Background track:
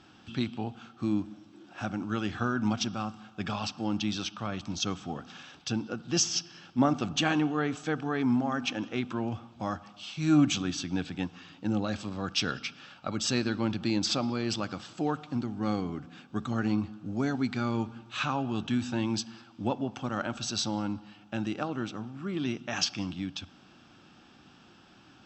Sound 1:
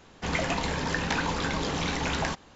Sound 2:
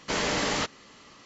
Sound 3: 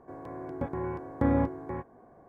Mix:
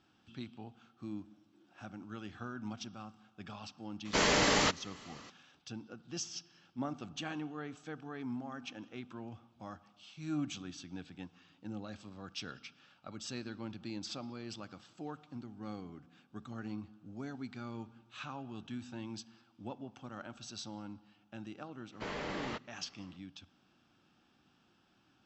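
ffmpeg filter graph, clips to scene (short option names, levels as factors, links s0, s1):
-filter_complex "[2:a]asplit=2[s0][s1];[0:a]volume=0.2[s2];[s1]equalizer=f=6900:t=o:w=1.4:g=-14.5[s3];[s0]atrim=end=1.25,asetpts=PTS-STARTPTS,volume=0.944,afade=t=in:d=0.004:c=hsin,afade=t=out:st=1.246:d=0.004:c=hsin,adelay=178605S[s4];[s3]atrim=end=1.25,asetpts=PTS-STARTPTS,volume=0.282,afade=t=in:d=0.004:c=hsin,afade=t=out:st=1.246:d=0.004:c=hsin,adelay=21920[s5];[s2][s4][s5]amix=inputs=3:normalize=0"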